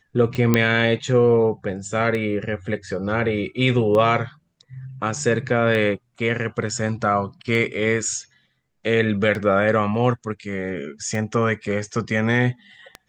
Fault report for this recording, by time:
scratch tick 33 1/3 rpm −15 dBFS
0:00.54: click −3 dBFS

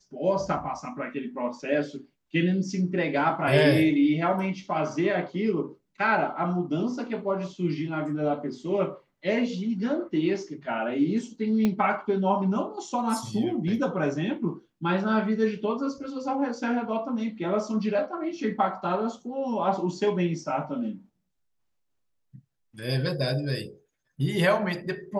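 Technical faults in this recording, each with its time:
0:11.65: click −13 dBFS

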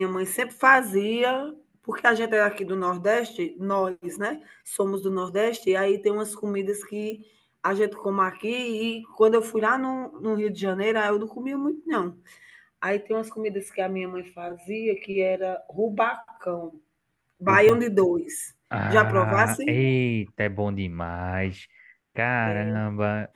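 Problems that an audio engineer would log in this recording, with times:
0:07.10: click −21 dBFS
0:17.69: drop-out 2.9 ms

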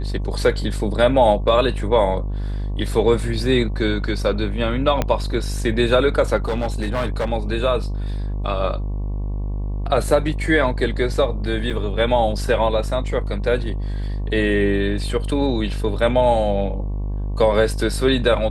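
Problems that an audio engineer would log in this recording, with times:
mains buzz 50 Hz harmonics 23 −24 dBFS
0:05.02: click −6 dBFS
0:06.36–0:07.30: clipping −17.5 dBFS
0:11.70–0:11.71: drop-out 5.5 ms

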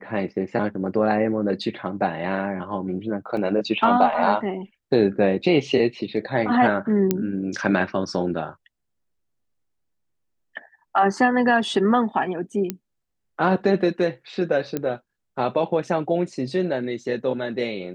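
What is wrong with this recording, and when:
0:03.37: drop-out 2.3 ms
0:07.11: click −6 dBFS
0:12.70: click −10 dBFS
0:14.77: click −12 dBFS

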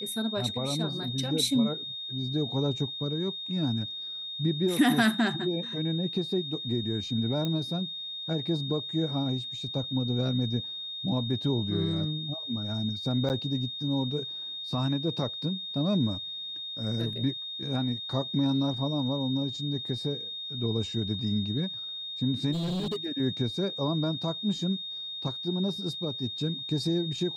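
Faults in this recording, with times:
whistle 3,700 Hz −35 dBFS
0:07.45: click −18 dBFS
0:13.29–0:13.30: drop-out 9.4 ms
0:22.52–0:23.06: clipping −28 dBFS

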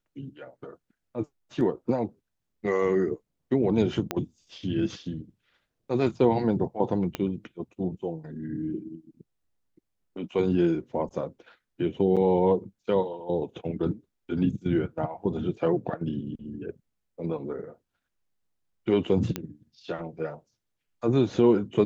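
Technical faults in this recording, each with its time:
0:04.11: click −12 dBFS
0:07.15: click −15 dBFS
0:12.16–0:12.17: drop-out 7.1 ms
0:19.36: click −14 dBFS

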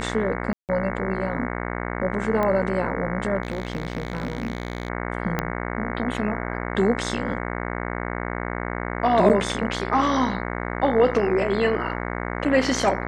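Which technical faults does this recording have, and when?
mains buzz 60 Hz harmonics 37 −29 dBFS
0:00.53–0:00.69: drop-out 158 ms
0:02.43: click −13 dBFS
0:03.43–0:04.90: clipping −21.5 dBFS
0:05.39: click −9 dBFS
0:09.29–0:09.30: drop-out 8.3 ms

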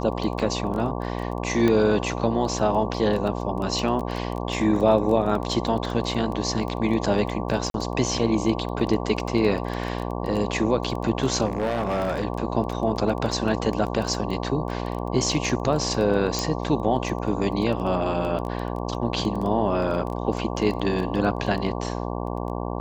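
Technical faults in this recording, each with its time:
mains buzz 60 Hz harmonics 19 −29 dBFS
surface crackle 12 per second −28 dBFS
0:01.68: click −11 dBFS
0:07.70–0:07.74: drop-out 42 ms
0:11.45–0:12.25: clipping −20.5 dBFS
0:16.39: click −10 dBFS

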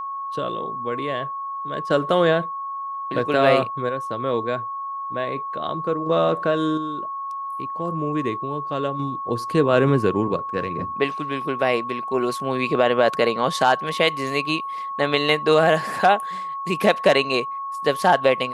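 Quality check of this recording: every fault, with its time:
whistle 1,100 Hz −27 dBFS

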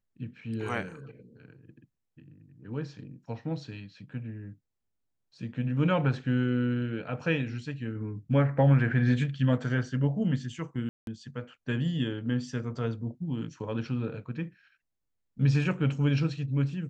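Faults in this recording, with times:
0:10.89–0:11.07: drop-out 182 ms

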